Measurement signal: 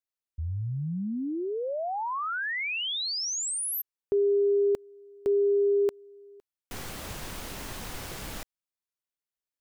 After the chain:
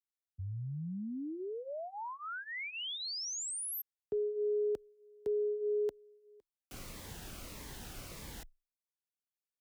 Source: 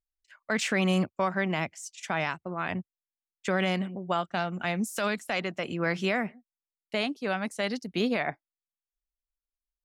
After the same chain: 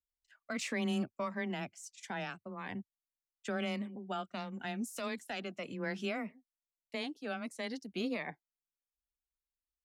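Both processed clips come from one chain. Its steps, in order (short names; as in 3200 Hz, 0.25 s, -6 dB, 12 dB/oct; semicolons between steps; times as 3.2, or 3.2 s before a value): frequency shift +15 Hz; cascading phaser falling 1.6 Hz; gain -8 dB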